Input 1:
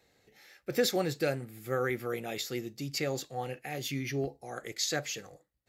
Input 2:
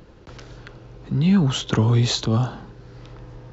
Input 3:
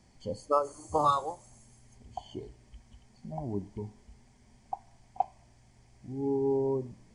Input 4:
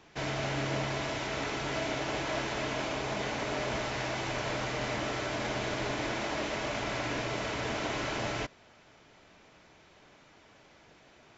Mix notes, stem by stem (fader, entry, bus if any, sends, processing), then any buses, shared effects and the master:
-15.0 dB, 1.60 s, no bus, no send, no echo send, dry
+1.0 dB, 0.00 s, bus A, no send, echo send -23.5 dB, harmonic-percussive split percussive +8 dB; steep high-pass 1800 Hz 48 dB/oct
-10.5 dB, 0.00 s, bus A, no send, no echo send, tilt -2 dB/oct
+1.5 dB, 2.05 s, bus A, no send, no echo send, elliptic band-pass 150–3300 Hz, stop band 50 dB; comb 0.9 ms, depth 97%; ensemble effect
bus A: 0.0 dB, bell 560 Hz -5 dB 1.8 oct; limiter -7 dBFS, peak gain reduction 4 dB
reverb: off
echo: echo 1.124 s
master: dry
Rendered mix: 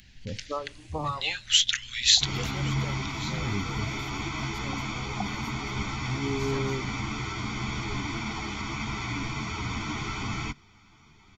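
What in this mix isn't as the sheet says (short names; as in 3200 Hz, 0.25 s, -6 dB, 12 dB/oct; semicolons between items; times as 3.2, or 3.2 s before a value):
stem 3 -10.5 dB -> -4.5 dB; stem 4: missing elliptic band-pass 150–3300 Hz, stop band 50 dB; master: extra low shelf 250 Hz +6 dB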